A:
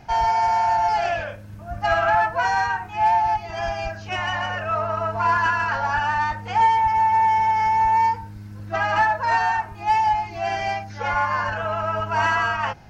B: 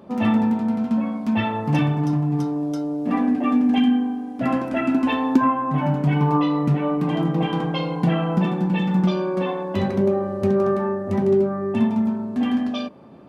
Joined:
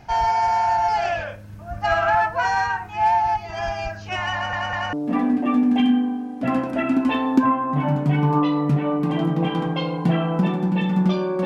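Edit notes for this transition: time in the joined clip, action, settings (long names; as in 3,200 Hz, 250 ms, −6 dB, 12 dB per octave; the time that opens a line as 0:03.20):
A
0:04.33: stutter in place 0.20 s, 3 plays
0:04.93: continue with B from 0:02.91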